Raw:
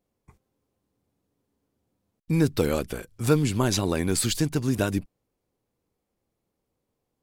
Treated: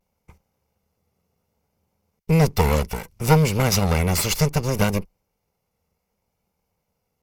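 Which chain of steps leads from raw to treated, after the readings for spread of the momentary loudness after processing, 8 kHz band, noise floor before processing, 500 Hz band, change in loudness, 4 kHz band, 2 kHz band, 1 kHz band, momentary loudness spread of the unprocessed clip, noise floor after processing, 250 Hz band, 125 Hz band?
7 LU, +3.5 dB, -81 dBFS, +3.5 dB, +4.5 dB, +4.0 dB, +6.5 dB, +9.5 dB, 7 LU, -77 dBFS, +1.5 dB, +6.5 dB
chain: minimum comb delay 1.4 ms; vibrato 0.65 Hz 44 cents; ripple EQ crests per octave 0.81, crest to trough 7 dB; gain +5.5 dB

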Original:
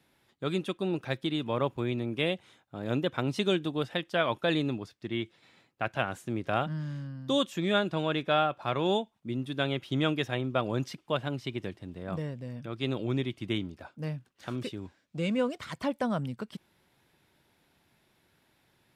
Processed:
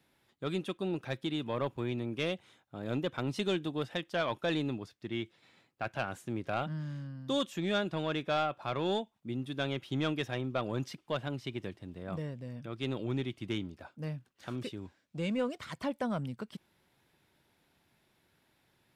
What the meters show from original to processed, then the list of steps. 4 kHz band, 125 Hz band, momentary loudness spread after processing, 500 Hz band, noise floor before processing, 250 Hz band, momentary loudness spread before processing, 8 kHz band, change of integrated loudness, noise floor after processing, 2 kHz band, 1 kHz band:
-5.0 dB, -4.0 dB, 10 LU, -4.5 dB, -70 dBFS, -4.0 dB, 11 LU, -2.5 dB, -4.0 dB, -73 dBFS, -4.5 dB, -4.5 dB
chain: soft clip -19 dBFS, distortion -18 dB; gain -3 dB

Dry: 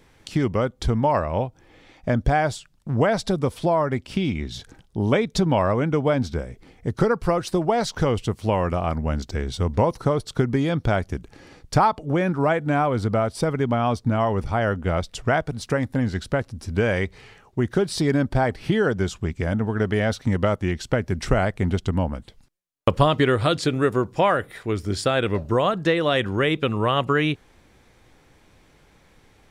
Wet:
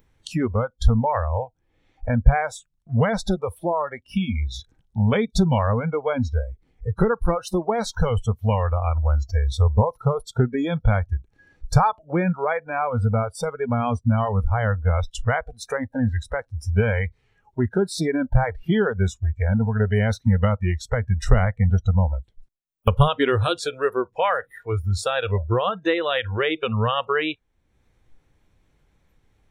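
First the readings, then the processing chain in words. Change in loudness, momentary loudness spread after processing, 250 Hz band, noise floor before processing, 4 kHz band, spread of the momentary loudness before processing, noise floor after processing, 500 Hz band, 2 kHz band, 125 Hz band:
0.0 dB, 8 LU, -1.5 dB, -57 dBFS, -1.5 dB, 7 LU, -67 dBFS, -2.0 dB, -1.0 dB, +3.0 dB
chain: in parallel at -1 dB: upward compressor, threshold -22 dBFS; on the sum: low shelf 140 Hz +11 dB; wow and flutter 21 cents; spectral noise reduction 25 dB; dynamic EQ 630 Hz, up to -5 dB, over -30 dBFS, Q 3.5; notch 4800 Hz, Q 11; gain -6 dB

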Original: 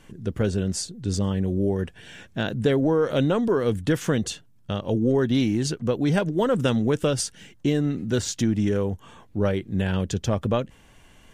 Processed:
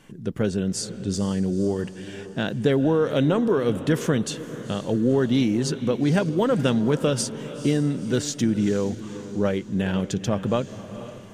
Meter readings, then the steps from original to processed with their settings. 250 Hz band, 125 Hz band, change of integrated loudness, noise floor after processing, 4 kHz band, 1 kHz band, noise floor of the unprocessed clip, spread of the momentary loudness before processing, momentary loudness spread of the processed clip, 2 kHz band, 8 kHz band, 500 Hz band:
+1.5 dB, -0.5 dB, +0.5 dB, -40 dBFS, +0.5 dB, +0.5 dB, -54 dBFS, 9 LU, 10 LU, +0.5 dB, +0.5 dB, +0.5 dB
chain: resonant low shelf 110 Hz -7 dB, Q 1.5; diffused feedback echo 0.484 s, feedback 47%, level -13 dB

